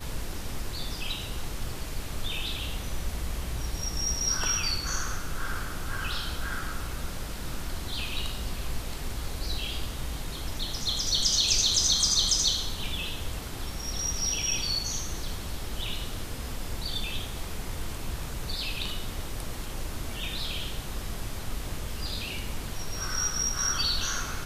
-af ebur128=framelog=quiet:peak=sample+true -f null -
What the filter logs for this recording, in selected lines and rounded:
Integrated loudness:
  I:         -30.1 LUFS
  Threshold: -40.1 LUFS
Loudness range:
  LRA:        10.9 LU
  Threshold: -50.0 LUFS
  LRA low:   -35.2 LUFS
  LRA high:  -24.3 LUFS
Sample peak:
  Peak:      -10.4 dBFS
True peak:
  Peak:      -10.2 dBFS